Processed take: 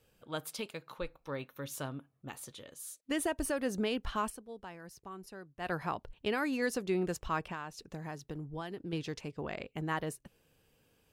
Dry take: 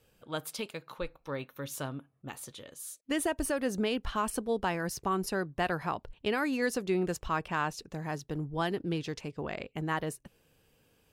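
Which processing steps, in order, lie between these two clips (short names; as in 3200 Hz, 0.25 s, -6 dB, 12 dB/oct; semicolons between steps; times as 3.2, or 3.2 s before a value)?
4.24–5.72 dip -13.5 dB, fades 0.13 s; 7.44–8.93 compressor 6:1, threshold -35 dBFS, peak gain reduction 9.5 dB; gain -2.5 dB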